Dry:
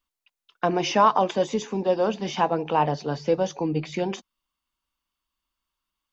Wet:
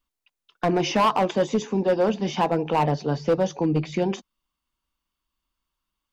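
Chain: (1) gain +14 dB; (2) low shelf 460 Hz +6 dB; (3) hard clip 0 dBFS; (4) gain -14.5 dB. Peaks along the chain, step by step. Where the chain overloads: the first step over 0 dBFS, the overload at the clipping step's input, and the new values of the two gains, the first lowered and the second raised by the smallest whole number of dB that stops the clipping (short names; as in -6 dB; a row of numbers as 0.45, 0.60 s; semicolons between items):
+7.0, +9.0, 0.0, -14.5 dBFS; step 1, 9.0 dB; step 1 +5 dB, step 4 -5.5 dB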